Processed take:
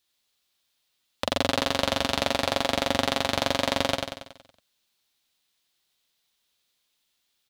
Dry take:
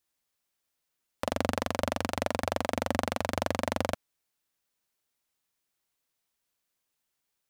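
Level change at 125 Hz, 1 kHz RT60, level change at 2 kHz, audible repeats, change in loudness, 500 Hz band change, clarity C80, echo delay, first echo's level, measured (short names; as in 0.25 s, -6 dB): +2.0 dB, none, +7.0 dB, 6, +6.0 dB, +4.0 dB, none, 93 ms, -4.0 dB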